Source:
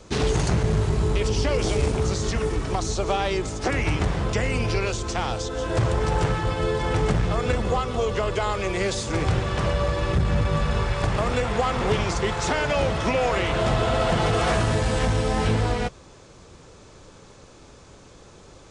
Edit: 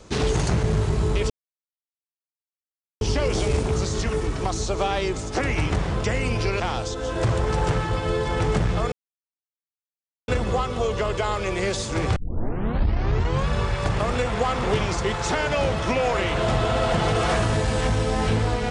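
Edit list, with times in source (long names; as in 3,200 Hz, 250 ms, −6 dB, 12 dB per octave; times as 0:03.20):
0:01.30: splice in silence 1.71 s
0:04.89–0:05.14: remove
0:07.46: splice in silence 1.36 s
0:09.34: tape start 1.33 s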